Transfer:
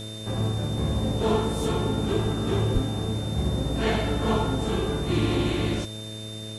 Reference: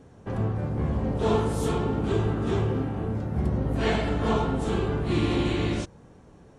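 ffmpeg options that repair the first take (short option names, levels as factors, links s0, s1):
-filter_complex "[0:a]bandreject=f=108.1:t=h:w=4,bandreject=f=216.2:t=h:w=4,bandreject=f=324.3:t=h:w=4,bandreject=f=432.4:t=h:w=4,bandreject=f=540.5:t=h:w=4,bandreject=f=648.6:t=h:w=4,bandreject=f=3600:w=30,asplit=3[s0][s1][s2];[s0]afade=t=out:st=2.73:d=0.02[s3];[s1]highpass=f=140:w=0.5412,highpass=f=140:w=1.3066,afade=t=in:st=2.73:d=0.02,afade=t=out:st=2.85:d=0.02[s4];[s2]afade=t=in:st=2.85:d=0.02[s5];[s3][s4][s5]amix=inputs=3:normalize=0,afwtdn=0.005"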